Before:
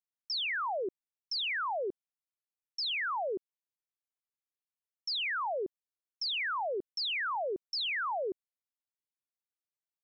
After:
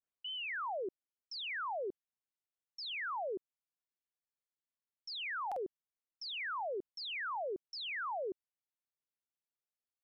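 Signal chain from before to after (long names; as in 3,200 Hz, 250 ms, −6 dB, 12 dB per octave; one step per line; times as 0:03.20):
turntable start at the beginning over 0.47 s
high-shelf EQ 4,000 Hz −9.5 dB
buffer that repeats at 0:05.47, samples 2,048, times 1
level −4.5 dB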